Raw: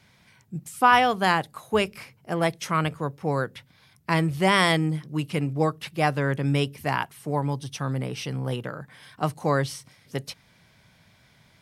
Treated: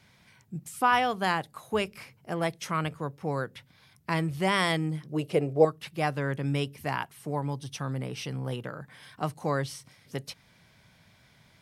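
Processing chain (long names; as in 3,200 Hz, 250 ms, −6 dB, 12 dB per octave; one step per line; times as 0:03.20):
0:05.12–0:05.65: flat-topped bell 510 Hz +12.5 dB 1.3 octaves
in parallel at −2.5 dB: downward compressor, threshold −35 dBFS, peak gain reduction 24 dB
on the sum: level −6.5 dB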